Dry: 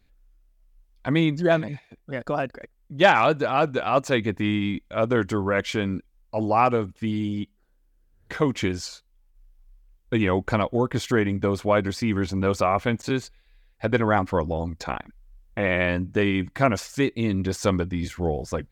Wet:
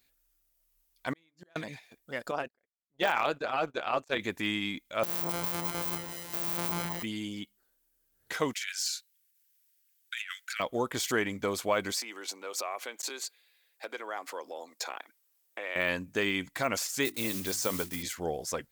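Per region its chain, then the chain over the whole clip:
1.13–1.56 s: de-hum 50.65 Hz, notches 32 + dynamic bell 1.6 kHz, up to +4 dB, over -32 dBFS, Q 0.81 + inverted gate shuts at -19 dBFS, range -41 dB
2.31–4.20 s: gate -33 dBFS, range -30 dB + low-pass 3.4 kHz 6 dB/octave + AM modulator 150 Hz, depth 55%
5.03–7.03 s: sorted samples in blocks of 256 samples + echo whose repeats swap between lows and highs 105 ms, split 1.1 kHz, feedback 73%, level -5 dB
8.53–10.60 s: steep high-pass 1.4 kHz 72 dB/octave + compressor with a negative ratio -35 dBFS, ratio -0.5
11.92–15.76 s: compression 4:1, threshold -28 dBFS + high-pass 340 Hz 24 dB/octave
17.05–18.04 s: block-companded coder 5-bit + hum notches 50/100/150/200/250/300/350 Hz
whole clip: de-esser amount 75%; RIAA curve recording; peak limiter -11.5 dBFS; trim -4 dB

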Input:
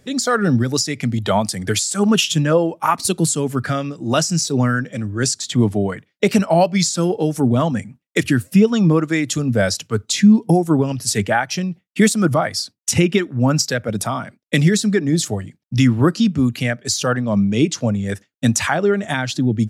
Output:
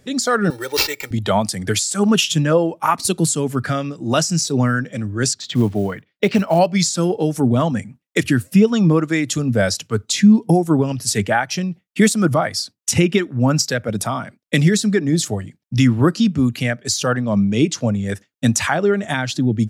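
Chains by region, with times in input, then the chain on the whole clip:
0.50–1.11 s: high-pass 500 Hz + sample-rate reducer 9.6 kHz + comb 2.2 ms, depth 95%
5.33–6.59 s: Chebyshev low-pass 3.8 kHz + short-mantissa float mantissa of 4-bit
whole clip: none

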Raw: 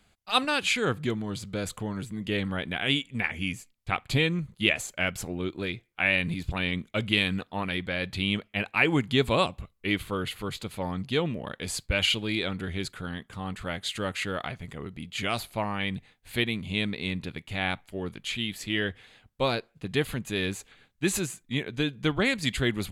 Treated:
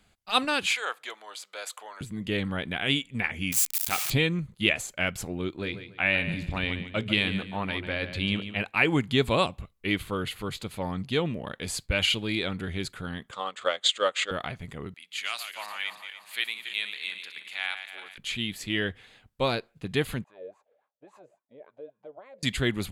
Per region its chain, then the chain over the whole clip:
0.66–2.01 s: high-pass 640 Hz 24 dB/octave + hard clipper -18 dBFS
3.52–4.10 s: zero-crossing glitches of -17.5 dBFS + bass shelf 200 Hz -8.5 dB + transformer saturation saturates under 1.4 kHz
5.55–8.61 s: treble shelf 8.9 kHz -10 dB + hum notches 60/120/180/240/300/360/420/480 Hz + feedback delay 144 ms, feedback 29%, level -11 dB
13.31–14.31 s: cabinet simulation 480–8500 Hz, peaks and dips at 540 Hz +10 dB, 1.2 kHz +7 dB, 3.4 kHz +8 dB, 7.2 kHz +7 dB + transient shaper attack +6 dB, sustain -8 dB
14.94–18.18 s: backward echo that repeats 146 ms, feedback 63%, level -8.5 dB + high-pass 1.4 kHz
20.24–22.43 s: peaking EQ 600 Hz +14 dB 0.55 oct + compression 3:1, threshold -27 dBFS + wah-wah 3.6 Hz 480–1100 Hz, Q 10
whole clip: none

